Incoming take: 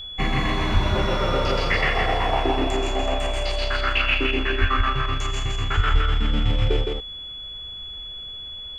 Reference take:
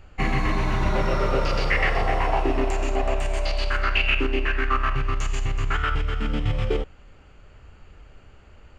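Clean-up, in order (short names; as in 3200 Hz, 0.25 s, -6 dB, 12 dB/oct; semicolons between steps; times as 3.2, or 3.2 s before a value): notch 3400 Hz, Q 30; de-plosive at 0.73/4.6/5.76; inverse comb 0.164 s -3.5 dB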